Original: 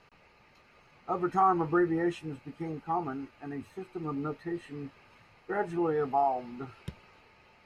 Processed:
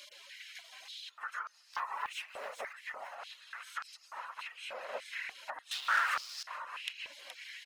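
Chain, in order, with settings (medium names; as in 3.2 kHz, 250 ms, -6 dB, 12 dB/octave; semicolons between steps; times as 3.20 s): spectral levelling over time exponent 0.6; 1.73–2.73 s: waveshaping leveller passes 2; delay 421 ms -7.5 dB; dynamic bell 3.1 kHz, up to -5 dB, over -43 dBFS, Q 0.75; compression 6:1, threshold -38 dBFS, peak gain reduction 18.5 dB; reverb removal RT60 0.6 s; spectral gate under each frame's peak -20 dB weak; 5.71–6.43 s: waveshaping leveller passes 5; step-sequenced high-pass 3.4 Hz 530–5000 Hz; trim +10 dB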